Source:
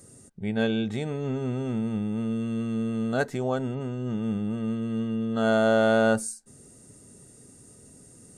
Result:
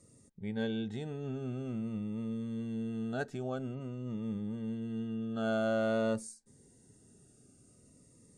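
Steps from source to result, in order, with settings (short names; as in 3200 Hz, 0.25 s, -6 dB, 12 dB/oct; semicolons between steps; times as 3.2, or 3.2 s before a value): Bessel low-pass 7200 Hz, order 2; cascading phaser falling 0.5 Hz; gain -8.5 dB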